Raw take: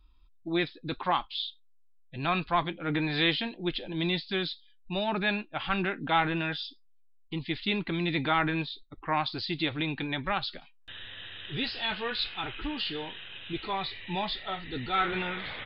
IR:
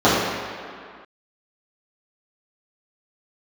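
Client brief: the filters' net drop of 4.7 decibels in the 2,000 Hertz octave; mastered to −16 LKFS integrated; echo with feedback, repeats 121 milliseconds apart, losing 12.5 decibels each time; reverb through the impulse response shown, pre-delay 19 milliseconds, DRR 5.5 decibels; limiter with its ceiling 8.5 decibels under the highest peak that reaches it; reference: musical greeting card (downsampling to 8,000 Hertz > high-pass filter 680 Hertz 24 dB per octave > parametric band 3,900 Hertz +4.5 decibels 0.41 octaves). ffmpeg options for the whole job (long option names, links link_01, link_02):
-filter_complex "[0:a]equalizer=frequency=2000:width_type=o:gain=-6.5,alimiter=limit=-23dB:level=0:latency=1,aecho=1:1:121|242|363:0.237|0.0569|0.0137,asplit=2[link_01][link_02];[1:a]atrim=start_sample=2205,adelay=19[link_03];[link_02][link_03]afir=irnorm=-1:irlink=0,volume=-32dB[link_04];[link_01][link_04]amix=inputs=2:normalize=0,aresample=8000,aresample=44100,highpass=frequency=680:width=0.5412,highpass=frequency=680:width=1.3066,equalizer=frequency=3900:width_type=o:width=0.41:gain=4.5,volume=20dB"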